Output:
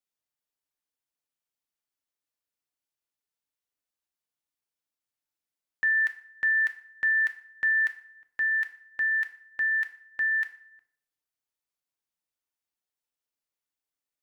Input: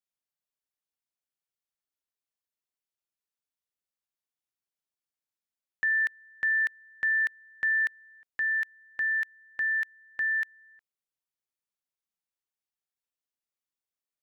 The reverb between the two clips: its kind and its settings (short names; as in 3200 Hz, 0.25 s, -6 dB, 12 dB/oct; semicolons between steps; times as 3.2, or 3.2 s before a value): FDN reverb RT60 0.6 s, low-frequency decay 0.75×, high-frequency decay 0.75×, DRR 5.5 dB